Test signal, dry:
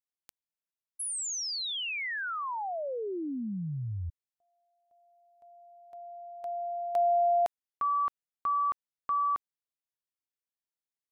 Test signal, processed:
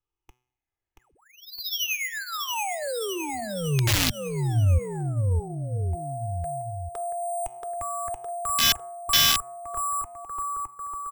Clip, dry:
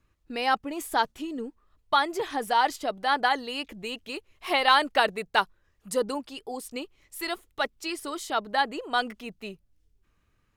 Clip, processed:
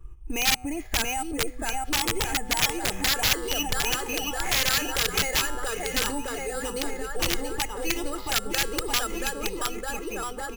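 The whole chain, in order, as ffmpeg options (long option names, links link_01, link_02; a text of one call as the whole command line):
ffmpeg -i in.wav -filter_complex "[0:a]afftfilt=real='re*pow(10,13/40*sin(2*PI*(0.65*log(max(b,1)*sr/1024/100)/log(2)-(-0.56)*(pts-256)/sr)))':imag='im*pow(10,13/40*sin(2*PI*(0.65*log(max(b,1)*sr/1024/100)/log(2)-(-0.56)*(pts-256)/sr)))':win_size=1024:overlap=0.75,lowpass=2900,aemphasis=mode=reproduction:type=bsi,aecho=1:1:2.4:0.59,bandreject=frequency=124.8:width_type=h:width=4,bandreject=frequency=249.6:width_type=h:width=4,bandreject=frequency=374.4:width_type=h:width=4,bandreject=frequency=499.2:width_type=h:width=4,bandreject=frequency=624:width_type=h:width=4,bandreject=frequency=748.8:width_type=h:width=4,bandreject=frequency=873.6:width_type=h:width=4,bandreject=frequency=998.4:width_type=h:width=4,bandreject=frequency=1123.2:width_type=h:width=4,bandreject=frequency=1248:width_type=h:width=4,bandreject=frequency=1372.8:width_type=h:width=4,bandreject=frequency=1497.6:width_type=h:width=4,bandreject=frequency=1622.4:width_type=h:width=4,bandreject=frequency=1747.2:width_type=h:width=4,bandreject=frequency=1872:width_type=h:width=4,bandreject=frequency=1996.8:width_type=h:width=4,bandreject=frequency=2121.6:width_type=h:width=4,bandreject=frequency=2246.4:width_type=h:width=4,bandreject=frequency=2371.2:width_type=h:width=4,bandreject=frequency=2496:width_type=h:width=4,bandreject=frequency=2620.8:width_type=h:width=4,bandreject=frequency=2745.6:width_type=h:width=4,bandreject=frequency=2870.4:width_type=h:width=4,bandreject=frequency=2995.2:width_type=h:width=4,bandreject=frequency=3120:width_type=h:width=4,bandreject=frequency=3244.8:width_type=h:width=4,bandreject=frequency=3369.6:width_type=h:width=4,bandreject=frequency=3494.4:width_type=h:width=4,bandreject=frequency=3619.2:width_type=h:width=4,bandreject=frequency=3744:width_type=h:width=4,bandreject=frequency=3868.8:width_type=h:width=4,bandreject=frequency=3993.6:width_type=h:width=4,bandreject=frequency=4118.4:width_type=h:width=4,bandreject=frequency=4243.2:width_type=h:width=4,bandreject=frequency=4368:width_type=h:width=4,bandreject=frequency=4492.8:width_type=h:width=4,bandreject=frequency=4617.6:width_type=h:width=4,bandreject=frequency=4742.4:width_type=h:width=4,bandreject=frequency=4867.2:width_type=h:width=4,alimiter=limit=-16dB:level=0:latency=1:release=217,asplit=2[link_01][link_02];[link_02]aecho=0:1:680|1292|1843|2339|2785:0.631|0.398|0.251|0.158|0.1[link_03];[link_01][link_03]amix=inputs=2:normalize=0,acrusher=samples=5:mix=1:aa=0.000001,aeval=exprs='(mod(7.5*val(0)+1,2)-1)/7.5':channel_layout=same,acrossover=split=140|2100[link_04][link_05][link_06];[link_05]acompressor=threshold=-33dB:ratio=10:attack=0.14:release=210:knee=2.83:detection=peak[link_07];[link_04][link_07][link_06]amix=inputs=3:normalize=0,volume=5.5dB" out.wav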